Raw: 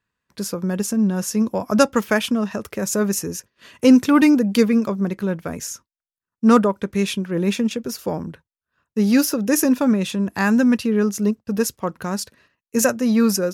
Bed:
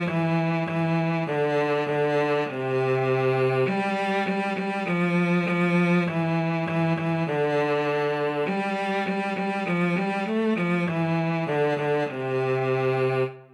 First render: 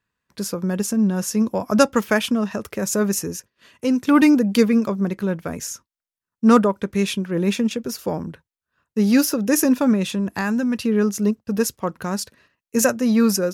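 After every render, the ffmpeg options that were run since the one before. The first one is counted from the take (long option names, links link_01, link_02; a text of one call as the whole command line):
ffmpeg -i in.wav -filter_complex "[0:a]asettb=1/sr,asplit=3[link_01][link_02][link_03];[link_01]atrim=end=10.104[link_04];[link_02]atrim=start=10.1:end=10.79,asetpts=PTS-STARTPTS,afade=type=in:duration=0.004:curve=qsin,afade=type=out:start_time=0.686:duration=0.004:curve=qsin,acompressor=threshold=-18dB:ratio=6:attack=3.2:release=140:knee=1:detection=peak[link_05];[link_03]atrim=start=10.786[link_06];[link_04][link_05]acrossfade=duration=0.004:curve1=hsin:curve2=qsin[link_07];[link_07][link_06]acrossfade=duration=0.004:curve1=qsin:curve2=hsin,asplit=2[link_08][link_09];[link_08]atrim=end=4.07,asetpts=PTS-STARTPTS,afade=type=out:start_time=3.26:duration=0.81:curve=qua:silence=0.375837[link_10];[link_09]atrim=start=4.07,asetpts=PTS-STARTPTS,afade=type=in:duration=0.004:curve=hsin:silence=0.375837[link_11];[link_10][link_11]concat=n=2:v=0:a=1" out.wav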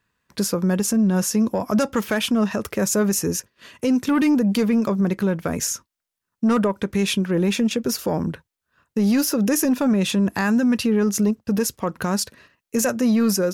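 ffmpeg -i in.wav -af "acontrast=70,alimiter=limit=-13dB:level=0:latency=1:release=147" out.wav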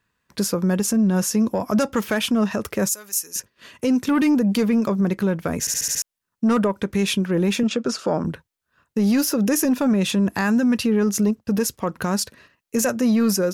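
ffmpeg -i in.wav -filter_complex "[0:a]asettb=1/sr,asplit=3[link_01][link_02][link_03];[link_01]atrim=end=2.894[link_04];[link_02]atrim=start=2.89:end=3.36,asetpts=PTS-STARTPTS,afade=type=in:duration=0.004:curve=qsin,afade=type=out:start_time=0.466:duration=0.004:curve=qsin,aderivative[link_05];[link_03]atrim=start=3.356[link_06];[link_04][link_05]acrossfade=duration=0.004:curve1=hsin:curve2=qsin[link_07];[link_07][link_06]acrossfade=duration=0.004:curve1=qsin:curve2=hsin,asettb=1/sr,asplit=3[link_08][link_09][link_10];[link_08]atrim=end=7.634[link_11];[link_09]atrim=start=7.63:end=8.25,asetpts=PTS-STARTPTS,afade=type=in:duration=0.004:curve=qsin,afade=type=out:start_time=0.616:duration=0.004:curve=qsin,highpass=150,equalizer=frequency=620:width_type=q:width=4:gain=4,equalizer=frequency=1300:width_type=q:width=4:gain=9,equalizer=frequency=2000:width_type=q:width=4:gain=-3,equalizer=frequency=6000:width_type=q:width=4:gain=-3,lowpass=frequency=7700:width=0.5412,lowpass=frequency=7700:width=1.3066[link_12];[link_10]atrim=start=8.246[link_13];[link_11][link_12]acrossfade=duration=0.004:curve1=hsin:curve2=qsin[link_14];[link_14][link_13]acrossfade=duration=0.004:curve1=qsin:curve2=hsin,asplit=7[link_15][link_16][link_17][link_18][link_19][link_20][link_21];[link_15]atrim=end=5.672[link_22];[link_16]atrim=start=5.598:end=5.672[link_23];[link_17]atrim=start=5.598:end=5.672[link_24];[link_18]atrim=start=5.598:end=5.672[link_25];[link_19]atrim=start=5.598:end=5.672[link_26];[link_20]atrim=start=5.598:end=5.672[link_27];[link_21]atrim=start=6.018[link_28];[link_22][link_23]acrossfade=duration=0.004:curve1=hsin:curve2=hsin[link_29];[link_29][link_24]acrossfade=duration=0.004:curve1=hsin:curve2=hsin[link_30];[link_30][link_25]acrossfade=duration=0.004:curve1=hsin:curve2=hsin[link_31];[link_31][link_26]acrossfade=duration=0.004:curve1=hsin:curve2=hsin[link_32];[link_32][link_27]acrossfade=duration=0.004:curve1=hsin:curve2=hsin[link_33];[link_33][link_28]acrossfade=duration=0.004:curve1=hsin:curve2=hsin" out.wav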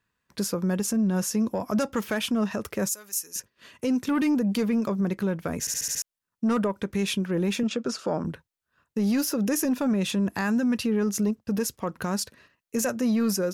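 ffmpeg -i in.wav -af "volume=-5.5dB" out.wav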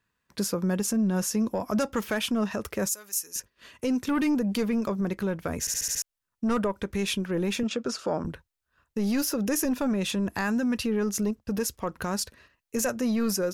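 ffmpeg -i in.wav -af "asubboost=boost=5:cutoff=64" out.wav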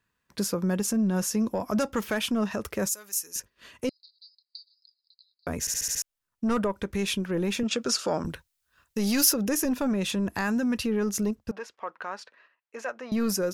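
ffmpeg -i in.wav -filter_complex "[0:a]asettb=1/sr,asplit=3[link_01][link_02][link_03];[link_01]atrim=end=3.894[link_04];[link_02]atrim=start=3.89:end=5.47,asetpts=PTS-STARTPTS,afade=type=in:duration=0.004:curve=qsin,afade=type=out:start_time=1.576:duration=0.004:curve=qsin,asuperpass=centerf=4400:order=12:qfactor=4.1[link_05];[link_03]atrim=start=5.466[link_06];[link_04][link_05]acrossfade=duration=0.004:curve1=hsin:curve2=qsin[link_07];[link_07][link_06]acrossfade=duration=0.004:curve1=qsin:curve2=hsin,asplit=3[link_08][link_09][link_10];[link_08]afade=type=out:start_time=7.71:duration=0.02[link_11];[link_09]highshelf=frequency=2200:gain=10.5,afade=type=in:start_time=7.71:duration=0.02,afade=type=out:start_time=9.32:duration=0.02[link_12];[link_10]afade=type=in:start_time=9.32:duration=0.02[link_13];[link_11][link_12][link_13]amix=inputs=3:normalize=0,asettb=1/sr,asplit=3[link_14][link_15][link_16];[link_14]atrim=end=11.514[link_17];[link_15]atrim=start=11.51:end=13.12,asetpts=PTS-STARTPTS,afade=type=in:duration=0.004:curve=qsin,afade=type=out:start_time=1.606:duration=0.004:curve=qsin,highpass=690,lowpass=2400[link_18];[link_16]atrim=start=13.116[link_19];[link_17][link_18]acrossfade=duration=0.004:curve1=hsin:curve2=qsin[link_20];[link_20][link_19]acrossfade=duration=0.004:curve1=qsin:curve2=hsin" out.wav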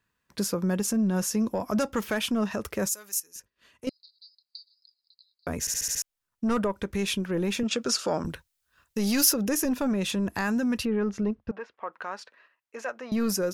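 ffmpeg -i in.wav -filter_complex "[0:a]asettb=1/sr,asplit=3[link_01][link_02][link_03];[link_01]atrim=end=10.854[link_04];[link_02]atrim=start=10.85:end=11.93,asetpts=PTS-STARTPTS,afade=type=in:duration=0.004:curve=qsin,afade=type=out:start_time=1.076:duration=0.004:curve=qsin,lowpass=2500[link_05];[link_03]atrim=start=11.926[link_06];[link_04][link_05]acrossfade=duration=0.004:curve1=hsin:curve2=qsin[link_07];[link_07][link_06]acrossfade=duration=0.004:curve1=qsin:curve2=hsin,asplit=3[link_08][link_09][link_10];[link_08]atrim=end=3.202[link_11];[link_09]atrim=start=3.198:end=3.872,asetpts=PTS-STARTPTS,volume=-10dB[link_12];[link_10]atrim=start=3.868[link_13];[link_11][link_12]acrossfade=duration=0.004:curve1=hsin:curve2=hsin[link_14];[link_14][link_13]acrossfade=duration=0.004:curve1=hsin:curve2=hsin" out.wav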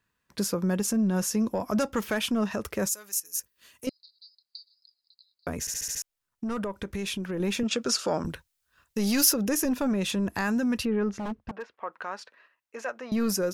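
ffmpeg -i in.wav -filter_complex "[0:a]asettb=1/sr,asplit=3[link_01][link_02][link_03];[link_01]atrim=end=3.254[link_04];[link_02]atrim=start=3.25:end=3.87,asetpts=PTS-STARTPTS,afade=type=in:duration=0.004:curve=qsin,afade=type=out:start_time=0.616:duration=0.004:curve=qsin,aemphasis=mode=production:type=75fm[link_05];[link_03]atrim=start=3.866[link_06];[link_04][link_05]acrossfade=duration=0.004:curve1=hsin:curve2=qsin[link_07];[link_07][link_06]acrossfade=duration=0.004:curve1=qsin:curve2=hsin,asettb=1/sr,asplit=3[link_08][link_09][link_10];[link_08]atrim=end=5.494[link_11];[link_09]atrim=start=5.49:end=7.4,asetpts=PTS-STARTPTS,afade=type=in:duration=0.004:curve=qsin,afade=type=out:start_time=1.906:duration=0.004:curve=qsin,acompressor=threshold=-28dB:ratio=6:attack=3.2:release=140:knee=1:detection=peak[link_12];[link_10]atrim=start=7.396[link_13];[link_11][link_12]acrossfade=duration=0.004:curve1=hsin:curve2=qsin[link_14];[link_14][link_13]acrossfade=duration=0.004:curve1=qsin:curve2=hsin,asettb=1/sr,asplit=3[link_15][link_16][link_17];[link_15]atrim=end=11.154[link_18];[link_16]atrim=start=11.15:end=11.74,asetpts=PTS-STARTPTS,afade=type=in:duration=0.004:curve=qsin,afade=type=out:start_time=0.586:duration=0.004:curve=qsin,aeval=exprs='0.0447*(abs(mod(val(0)/0.0447+3,4)-2)-1)':channel_layout=same[link_19];[link_17]atrim=start=11.736[link_20];[link_18][link_19]acrossfade=duration=0.004:curve1=hsin:curve2=qsin[link_21];[link_21][link_20]acrossfade=duration=0.004:curve1=qsin:curve2=hsin" out.wav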